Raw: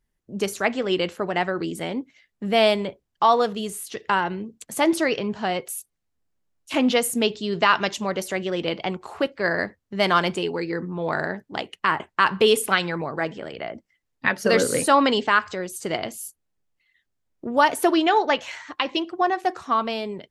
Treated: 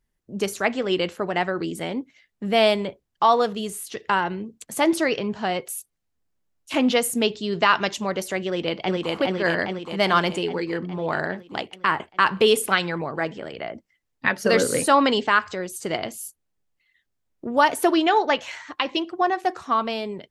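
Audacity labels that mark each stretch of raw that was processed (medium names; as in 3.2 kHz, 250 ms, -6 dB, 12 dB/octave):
8.460000	9.130000	echo throw 410 ms, feedback 65%, level -1 dB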